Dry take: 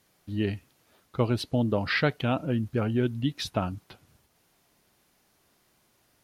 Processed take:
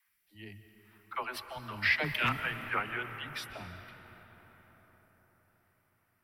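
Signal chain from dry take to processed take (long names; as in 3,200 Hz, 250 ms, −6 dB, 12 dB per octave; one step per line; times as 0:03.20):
source passing by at 0:02.28, 9 m/s, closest 1.7 metres
high-shelf EQ 8,600 Hz +11 dB
notch filter 6,600 Hz, Q 6.3
in parallel at −0.5 dB: downward compressor, threshold −40 dBFS, peak gain reduction 17 dB
on the sum: all-pass dispersion lows, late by 88 ms, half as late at 300 Hz
all-pass phaser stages 2, 0.62 Hz, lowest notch 110–1,300 Hz
wave folding −21 dBFS
octave-band graphic EQ 125/250/500/1,000/2,000/4,000/8,000 Hz −12/−9/−10/+7/+11/−8/−5 dB
on a send at −9 dB: convolution reverb RT60 5.2 s, pre-delay 105 ms
on the sum: level +4.5 dB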